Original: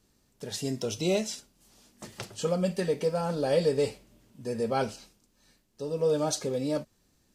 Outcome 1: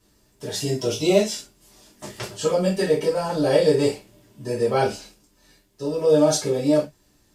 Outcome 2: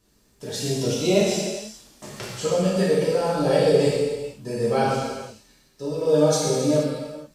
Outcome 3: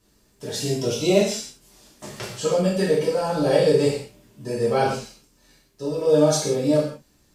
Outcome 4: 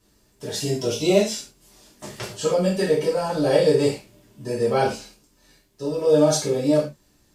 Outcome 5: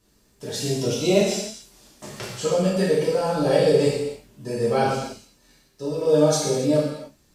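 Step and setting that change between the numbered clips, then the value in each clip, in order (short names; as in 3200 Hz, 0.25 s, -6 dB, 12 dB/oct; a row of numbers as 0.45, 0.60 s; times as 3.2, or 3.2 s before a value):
non-linear reverb, gate: 90, 510, 210, 130, 330 ms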